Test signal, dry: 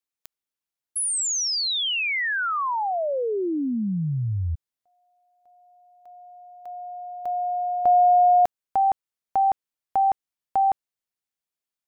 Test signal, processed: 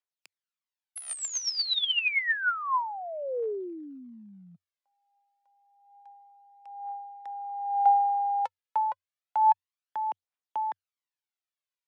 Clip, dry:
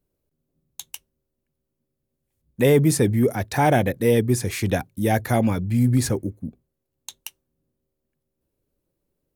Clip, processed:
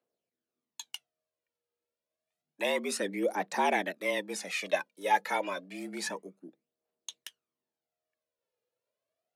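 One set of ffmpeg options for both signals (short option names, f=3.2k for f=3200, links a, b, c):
-af "aemphasis=mode=production:type=75kf,aphaser=in_gain=1:out_gain=1:delay=2.6:decay=0.63:speed=0.29:type=triangular,afreqshift=90,highpass=610,lowpass=3.2k,volume=-6.5dB"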